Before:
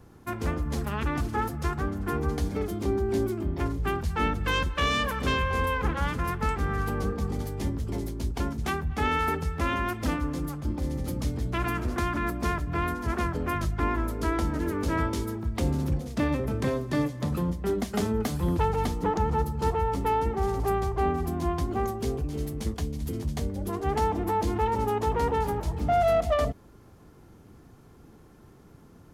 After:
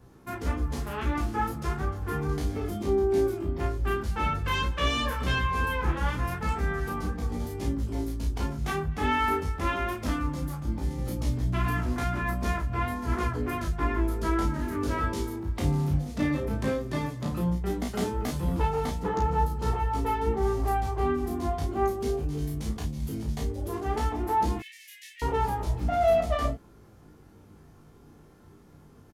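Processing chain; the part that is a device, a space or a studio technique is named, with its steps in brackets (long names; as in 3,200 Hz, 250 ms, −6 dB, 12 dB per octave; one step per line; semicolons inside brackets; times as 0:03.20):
0:24.57–0:25.22: Butterworth high-pass 1,800 Hz 96 dB per octave
double-tracked vocal (double-tracking delay 33 ms −2.5 dB; chorus effect 0.16 Hz, delay 15.5 ms, depth 4.9 ms)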